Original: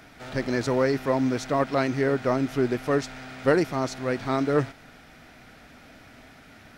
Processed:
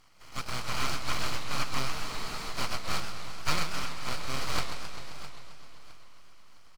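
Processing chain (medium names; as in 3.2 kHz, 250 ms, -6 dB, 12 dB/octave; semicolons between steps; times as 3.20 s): spectral contrast reduction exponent 0.18; high-pass 230 Hz; dynamic bell 1.8 kHz, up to +5 dB, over -39 dBFS, Q 1.5; vowel filter e; full-wave rectifier; peaking EQ 2.3 kHz -4 dB 0.43 oct; band-stop 3.6 kHz, Q 6.9; feedback delay 661 ms, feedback 31%, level -15 dB; spectral freeze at 1.92 s, 0.61 s; modulated delay 131 ms, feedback 73%, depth 192 cents, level -9 dB; trim +7 dB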